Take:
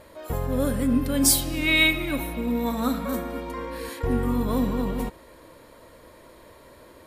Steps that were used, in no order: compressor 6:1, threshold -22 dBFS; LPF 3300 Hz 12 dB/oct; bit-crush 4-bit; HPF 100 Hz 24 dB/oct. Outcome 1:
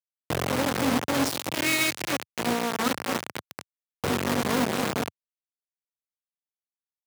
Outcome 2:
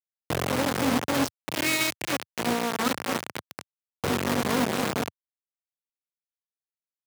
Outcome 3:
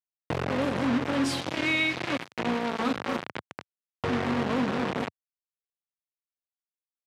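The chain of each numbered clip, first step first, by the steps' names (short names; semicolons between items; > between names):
LPF > compressor > bit-crush > HPF; compressor > LPF > bit-crush > HPF; bit-crush > LPF > compressor > HPF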